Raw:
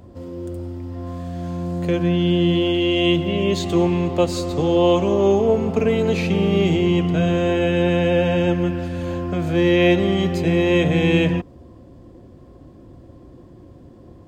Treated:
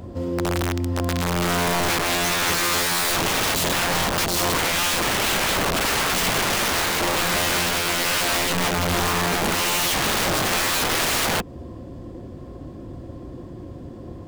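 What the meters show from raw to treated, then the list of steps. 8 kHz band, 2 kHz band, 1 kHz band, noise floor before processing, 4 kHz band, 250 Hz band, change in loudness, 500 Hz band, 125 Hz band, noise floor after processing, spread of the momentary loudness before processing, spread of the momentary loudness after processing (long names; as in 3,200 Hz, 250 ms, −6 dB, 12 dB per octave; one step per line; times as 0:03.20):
+18.5 dB, +6.0 dB, +6.0 dB, −45 dBFS, +6.5 dB, −9.5 dB, −1.5 dB, −8.0 dB, −7.0 dB, −38 dBFS, 13 LU, 18 LU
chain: in parallel at +2 dB: downward compressor 12 to 1, threshold −26 dBFS, peak gain reduction 15.5 dB
on the sum: wrap-around overflow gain 17 dB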